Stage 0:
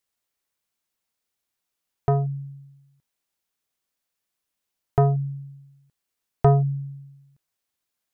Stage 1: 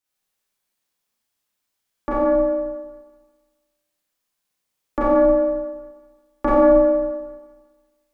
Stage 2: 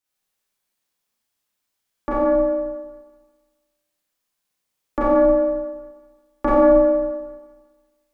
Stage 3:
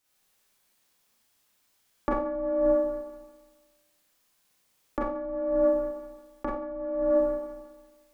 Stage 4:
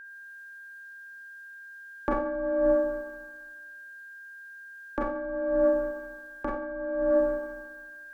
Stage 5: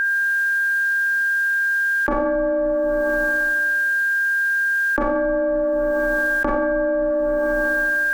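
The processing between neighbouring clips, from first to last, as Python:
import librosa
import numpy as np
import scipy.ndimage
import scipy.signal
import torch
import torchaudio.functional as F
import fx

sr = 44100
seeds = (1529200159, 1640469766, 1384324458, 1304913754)

y1 = x * np.sin(2.0 * np.pi * 450.0 * np.arange(len(x)) / sr)
y1 = fx.rev_schroeder(y1, sr, rt60_s=1.4, comb_ms=30, drr_db=-8.5)
y1 = y1 * librosa.db_to_amplitude(-2.0)
y2 = y1
y3 = fx.over_compress(y2, sr, threshold_db=-28.0, ratio=-1.0)
y4 = y3 + 10.0 ** (-43.0 / 20.0) * np.sin(2.0 * np.pi * 1600.0 * np.arange(len(y3)) / sr)
y5 = fx.env_flatten(y4, sr, amount_pct=100)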